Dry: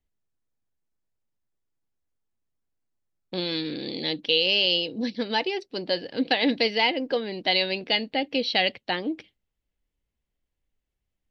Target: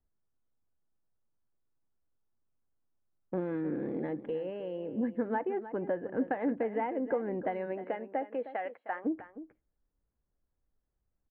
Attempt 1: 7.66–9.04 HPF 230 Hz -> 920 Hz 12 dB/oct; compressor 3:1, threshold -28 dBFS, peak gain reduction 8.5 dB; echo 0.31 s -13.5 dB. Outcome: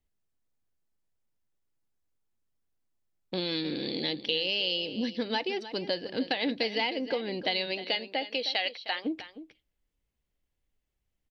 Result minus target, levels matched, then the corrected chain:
2000 Hz band +6.0 dB
7.66–9.04 HPF 230 Hz -> 920 Hz 12 dB/oct; compressor 3:1, threshold -28 dBFS, peak gain reduction 8.5 dB; steep low-pass 1600 Hz 36 dB/oct; echo 0.31 s -13.5 dB

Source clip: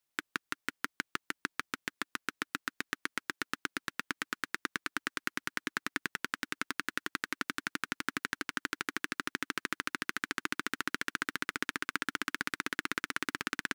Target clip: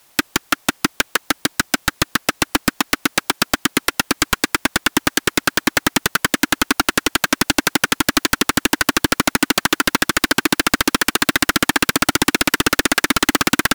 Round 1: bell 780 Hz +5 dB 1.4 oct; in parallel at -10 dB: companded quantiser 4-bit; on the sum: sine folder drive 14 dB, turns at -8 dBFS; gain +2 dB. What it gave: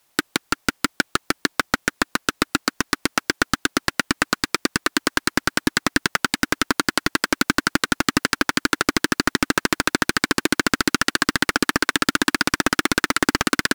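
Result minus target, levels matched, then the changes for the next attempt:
sine folder: distortion -13 dB
change: sine folder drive 25 dB, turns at -8 dBFS

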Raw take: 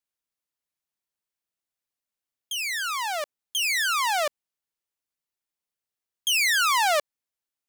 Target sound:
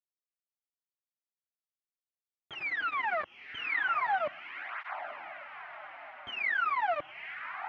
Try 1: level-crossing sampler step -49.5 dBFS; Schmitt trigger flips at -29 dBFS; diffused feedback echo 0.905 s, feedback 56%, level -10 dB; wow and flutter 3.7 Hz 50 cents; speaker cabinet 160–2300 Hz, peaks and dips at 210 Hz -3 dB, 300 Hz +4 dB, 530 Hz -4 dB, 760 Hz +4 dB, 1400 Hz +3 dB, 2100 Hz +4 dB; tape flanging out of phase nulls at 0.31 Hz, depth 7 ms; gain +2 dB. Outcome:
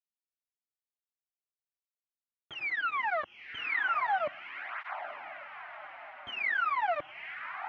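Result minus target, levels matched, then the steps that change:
level-crossing sampler: distortion -12 dB
change: level-crossing sampler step -40.5 dBFS

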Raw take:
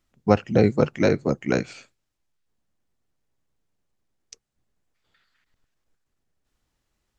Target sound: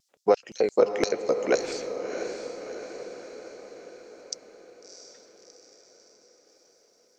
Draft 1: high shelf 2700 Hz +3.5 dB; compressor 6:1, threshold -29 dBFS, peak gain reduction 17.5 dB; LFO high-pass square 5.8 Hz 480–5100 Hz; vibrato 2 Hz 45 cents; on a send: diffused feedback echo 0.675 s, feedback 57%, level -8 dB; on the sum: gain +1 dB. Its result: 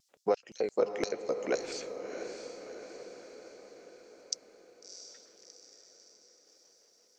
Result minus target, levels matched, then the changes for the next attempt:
compressor: peak gain reduction +8 dB
change: compressor 6:1, threshold -19.5 dBFS, peak gain reduction 9.5 dB

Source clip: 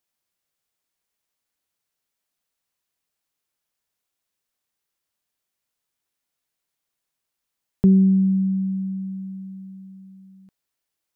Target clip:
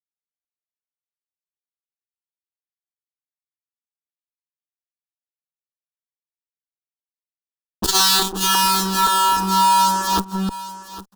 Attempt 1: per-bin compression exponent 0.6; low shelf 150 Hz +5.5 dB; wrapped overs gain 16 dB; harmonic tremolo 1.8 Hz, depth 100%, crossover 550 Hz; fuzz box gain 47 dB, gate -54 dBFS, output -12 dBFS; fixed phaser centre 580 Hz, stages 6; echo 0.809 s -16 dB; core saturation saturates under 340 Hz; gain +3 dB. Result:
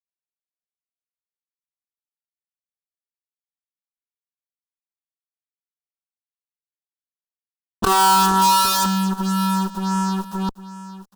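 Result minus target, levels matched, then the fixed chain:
wrapped overs: distortion -25 dB
per-bin compression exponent 0.6; low shelf 150 Hz +5.5 dB; wrapped overs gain 27 dB; harmonic tremolo 1.8 Hz, depth 100%, crossover 550 Hz; fuzz box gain 47 dB, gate -54 dBFS, output -12 dBFS; fixed phaser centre 580 Hz, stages 6; echo 0.809 s -16 dB; core saturation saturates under 340 Hz; gain +3 dB

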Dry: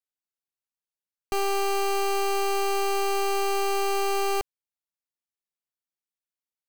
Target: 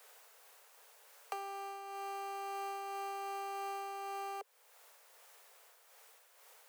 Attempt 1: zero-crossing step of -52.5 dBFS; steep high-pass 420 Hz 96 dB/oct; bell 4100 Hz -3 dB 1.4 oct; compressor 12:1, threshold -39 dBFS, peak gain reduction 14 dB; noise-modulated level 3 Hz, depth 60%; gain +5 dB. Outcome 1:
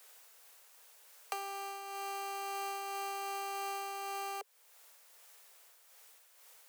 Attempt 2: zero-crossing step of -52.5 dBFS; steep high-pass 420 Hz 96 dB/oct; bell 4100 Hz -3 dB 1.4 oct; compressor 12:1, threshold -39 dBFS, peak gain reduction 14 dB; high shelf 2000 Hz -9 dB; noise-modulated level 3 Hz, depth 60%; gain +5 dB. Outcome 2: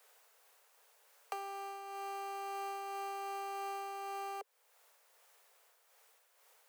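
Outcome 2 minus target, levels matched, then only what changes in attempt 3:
zero-crossing step: distortion -6 dB
change: zero-crossing step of -46.5 dBFS

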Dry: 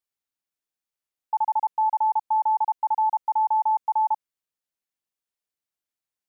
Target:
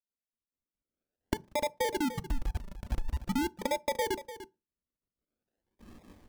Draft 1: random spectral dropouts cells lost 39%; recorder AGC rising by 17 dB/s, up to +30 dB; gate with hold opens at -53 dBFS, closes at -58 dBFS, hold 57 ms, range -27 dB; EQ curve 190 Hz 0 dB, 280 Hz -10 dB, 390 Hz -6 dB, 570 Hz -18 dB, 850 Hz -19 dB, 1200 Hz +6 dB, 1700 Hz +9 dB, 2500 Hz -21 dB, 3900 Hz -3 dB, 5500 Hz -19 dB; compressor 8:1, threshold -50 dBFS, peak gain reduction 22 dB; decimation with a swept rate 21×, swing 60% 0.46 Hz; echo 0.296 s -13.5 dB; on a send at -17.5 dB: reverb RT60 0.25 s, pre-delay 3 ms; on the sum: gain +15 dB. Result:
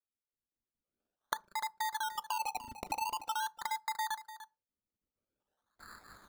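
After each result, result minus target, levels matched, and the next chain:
decimation with a swept rate: distortion -9 dB; compressor: peak gain reduction +5.5 dB
random spectral dropouts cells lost 39%; recorder AGC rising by 17 dB/s, up to +30 dB; gate with hold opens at -53 dBFS, closes at -58 dBFS, hold 57 ms, range -27 dB; EQ curve 190 Hz 0 dB, 280 Hz -10 dB, 390 Hz -6 dB, 570 Hz -18 dB, 850 Hz -19 dB, 1200 Hz +6 dB, 1700 Hz +9 dB, 2500 Hz -21 dB, 3900 Hz -3 dB, 5500 Hz -19 dB; compressor 8:1, threshold -50 dBFS, peak gain reduction 22 dB; decimation with a swept rate 43×, swing 60% 0.46 Hz; echo 0.296 s -13.5 dB; on a send at -17.5 dB: reverb RT60 0.25 s, pre-delay 3 ms; on the sum: gain +15 dB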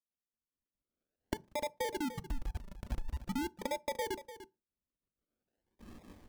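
compressor: peak gain reduction +5.5 dB
random spectral dropouts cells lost 39%; recorder AGC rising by 17 dB/s, up to +30 dB; gate with hold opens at -53 dBFS, closes at -58 dBFS, hold 57 ms, range -27 dB; EQ curve 190 Hz 0 dB, 280 Hz -10 dB, 390 Hz -6 dB, 570 Hz -18 dB, 850 Hz -19 dB, 1200 Hz +6 dB, 1700 Hz +9 dB, 2500 Hz -21 dB, 3900 Hz -3 dB, 5500 Hz -19 dB; compressor 8:1, threshold -43.5 dBFS, peak gain reduction 16.5 dB; decimation with a swept rate 43×, swing 60% 0.46 Hz; echo 0.296 s -13.5 dB; on a send at -17.5 dB: reverb RT60 0.25 s, pre-delay 3 ms; on the sum: gain +15 dB

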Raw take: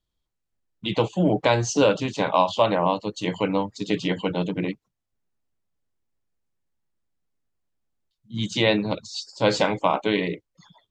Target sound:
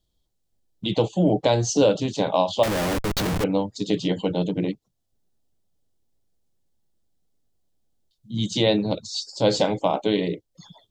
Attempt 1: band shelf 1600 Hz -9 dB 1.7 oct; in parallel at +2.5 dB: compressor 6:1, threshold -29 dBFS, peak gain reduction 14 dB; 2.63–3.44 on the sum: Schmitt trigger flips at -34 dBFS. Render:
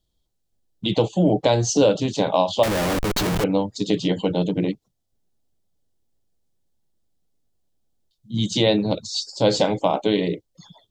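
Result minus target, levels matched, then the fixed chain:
compressor: peak gain reduction -8.5 dB
band shelf 1600 Hz -9 dB 1.7 oct; in parallel at +2.5 dB: compressor 6:1, threshold -39 dBFS, peak gain reduction 22 dB; 2.63–3.44 on the sum: Schmitt trigger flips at -34 dBFS

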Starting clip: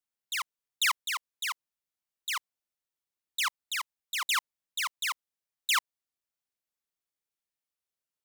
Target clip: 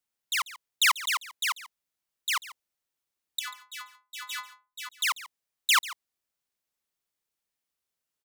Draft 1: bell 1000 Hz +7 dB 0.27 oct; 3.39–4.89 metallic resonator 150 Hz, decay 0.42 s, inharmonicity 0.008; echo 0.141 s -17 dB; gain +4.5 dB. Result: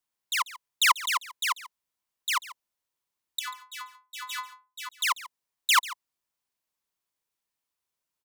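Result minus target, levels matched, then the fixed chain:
1000 Hz band +3.0 dB
3.39–4.89 metallic resonator 150 Hz, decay 0.42 s, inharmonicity 0.008; echo 0.141 s -17 dB; gain +4.5 dB

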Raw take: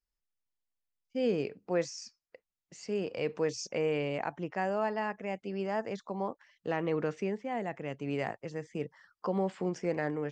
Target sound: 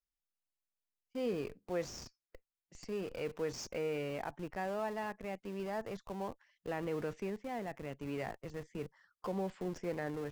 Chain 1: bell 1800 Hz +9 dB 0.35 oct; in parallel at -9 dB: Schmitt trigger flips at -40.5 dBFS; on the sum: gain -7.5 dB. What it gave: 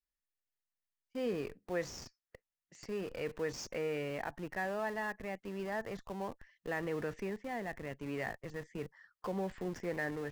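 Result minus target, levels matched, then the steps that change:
2000 Hz band +5.0 dB
remove: bell 1800 Hz +9 dB 0.35 oct

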